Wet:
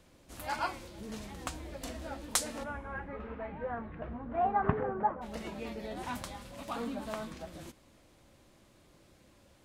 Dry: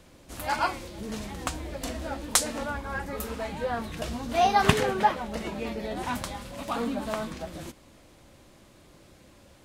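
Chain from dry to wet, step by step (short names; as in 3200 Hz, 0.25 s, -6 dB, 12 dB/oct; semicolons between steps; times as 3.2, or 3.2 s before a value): 2.63–5.21 LPF 2800 Hz -> 1300 Hz 24 dB/oct; resonator 110 Hz, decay 1.1 s, harmonics all, mix 30%; gain -4.5 dB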